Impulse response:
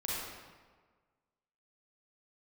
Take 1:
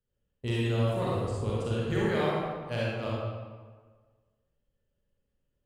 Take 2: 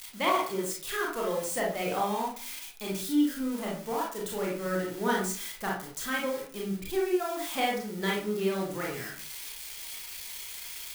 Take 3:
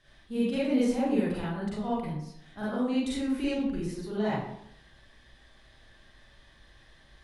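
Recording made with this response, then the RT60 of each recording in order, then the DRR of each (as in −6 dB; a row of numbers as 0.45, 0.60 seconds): 1; 1.5, 0.45, 0.75 seconds; −6.5, −3.5, −9.5 decibels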